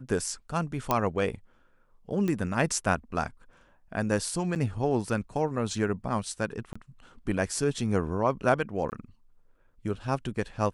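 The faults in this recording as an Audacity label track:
0.910000	0.910000	pop -10 dBFS
2.280000	2.280000	pop -18 dBFS
4.550000	4.560000	gap 8.1 ms
6.730000	6.750000	gap 25 ms
8.900000	8.920000	gap 19 ms

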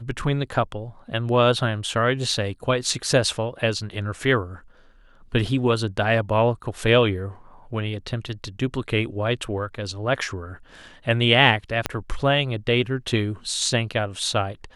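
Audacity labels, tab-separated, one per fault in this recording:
11.860000	11.860000	pop -7 dBFS

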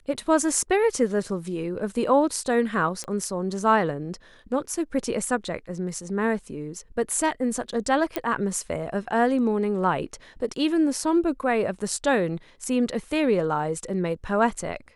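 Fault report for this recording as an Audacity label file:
3.040000	3.040000	pop -18 dBFS
8.160000	8.160000	pop -12 dBFS

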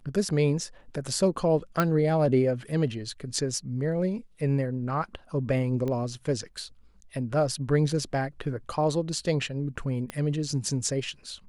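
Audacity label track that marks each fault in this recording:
1.800000	1.800000	pop -10 dBFS
5.880000	5.880000	pop -20 dBFS
10.100000	10.100000	pop -19 dBFS

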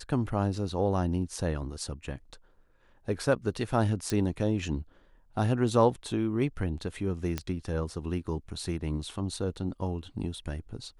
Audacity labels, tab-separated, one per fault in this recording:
4.100000	4.100000	pop -16 dBFS
7.380000	7.380000	pop -15 dBFS

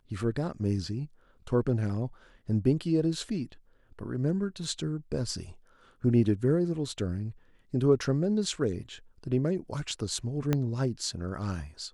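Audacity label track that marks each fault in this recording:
10.530000	10.530000	pop -13 dBFS

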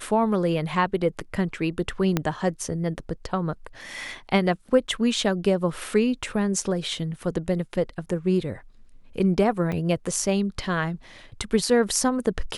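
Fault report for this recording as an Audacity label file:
2.170000	2.170000	pop -8 dBFS
9.720000	9.720000	gap 3.9 ms

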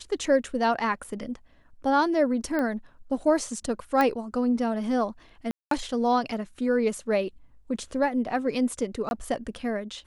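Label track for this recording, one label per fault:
1.040000	1.040000	gap 5 ms
2.590000	2.590000	pop -17 dBFS
4.010000	4.010000	pop -12 dBFS
5.510000	5.710000	gap 0.203 s
9.090000	9.110000	gap 21 ms

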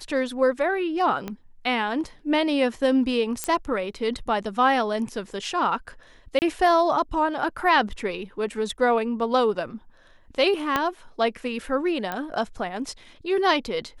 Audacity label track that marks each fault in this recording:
1.280000	1.280000	pop -17 dBFS
3.440000	3.440000	pop -9 dBFS
6.390000	6.420000	gap 29 ms
10.760000	10.760000	pop -8 dBFS
12.120000	12.120000	pop -14 dBFS

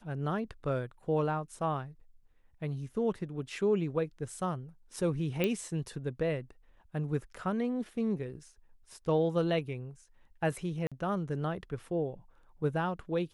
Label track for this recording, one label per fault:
5.440000	5.440000	pop -16 dBFS
10.870000	10.920000	gap 46 ms

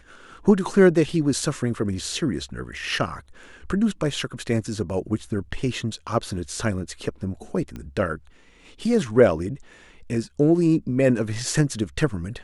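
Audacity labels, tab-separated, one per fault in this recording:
7.760000	7.760000	pop -22 dBFS

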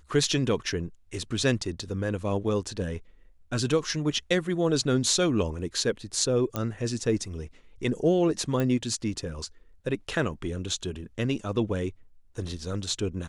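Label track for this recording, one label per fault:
6.560000	6.560000	pop -14 dBFS
8.600000	8.600000	pop -16 dBFS

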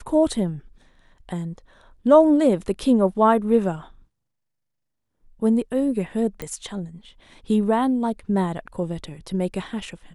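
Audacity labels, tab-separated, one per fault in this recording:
6.420000	6.420000	pop -15 dBFS

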